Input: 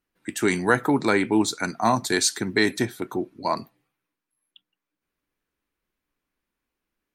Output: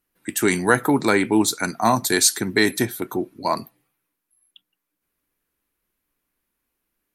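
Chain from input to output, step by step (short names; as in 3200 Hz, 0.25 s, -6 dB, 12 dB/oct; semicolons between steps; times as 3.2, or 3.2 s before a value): bell 12000 Hz +14 dB 0.63 oct; gain +2.5 dB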